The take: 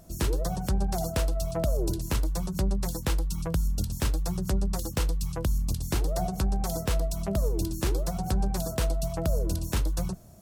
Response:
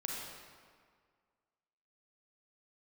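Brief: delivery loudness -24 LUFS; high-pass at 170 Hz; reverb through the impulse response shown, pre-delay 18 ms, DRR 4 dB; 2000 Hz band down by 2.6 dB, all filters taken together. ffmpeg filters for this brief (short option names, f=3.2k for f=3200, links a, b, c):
-filter_complex "[0:a]highpass=170,equalizer=f=2k:t=o:g=-3.5,asplit=2[a][b];[1:a]atrim=start_sample=2205,adelay=18[c];[b][c]afir=irnorm=-1:irlink=0,volume=-5.5dB[d];[a][d]amix=inputs=2:normalize=0,volume=8.5dB"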